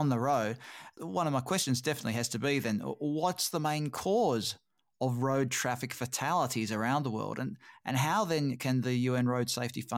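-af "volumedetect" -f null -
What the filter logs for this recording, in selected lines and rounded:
mean_volume: -31.6 dB
max_volume: -17.7 dB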